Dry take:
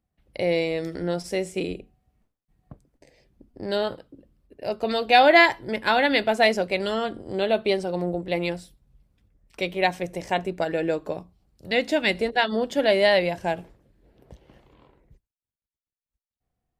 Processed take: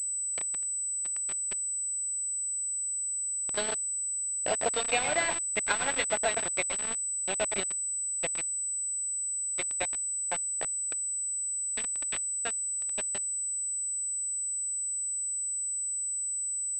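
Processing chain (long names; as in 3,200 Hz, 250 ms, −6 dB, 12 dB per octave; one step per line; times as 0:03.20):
source passing by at 0:04.99, 14 m/s, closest 14 metres
transient designer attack +2 dB, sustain +7 dB
high-pass filter 1,300 Hz 6 dB per octave
notch filter 1,800 Hz, Q 7.1
transient designer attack +9 dB, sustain −4 dB
downward compressor 10 to 1, threshold −25 dBFS, peak gain reduction 18 dB
convolution reverb RT60 0.35 s, pre-delay 97 ms, DRR 7 dB
bit reduction 5 bits
switching amplifier with a slow clock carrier 8,000 Hz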